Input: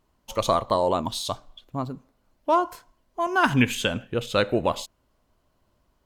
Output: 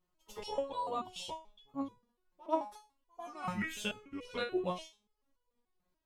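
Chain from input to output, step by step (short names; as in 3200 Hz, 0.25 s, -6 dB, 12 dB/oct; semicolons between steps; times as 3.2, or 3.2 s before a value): trilling pitch shifter -3.5 st, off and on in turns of 0.364 s; pre-echo 95 ms -20 dB; stepped resonator 6.9 Hz 180–490 Hz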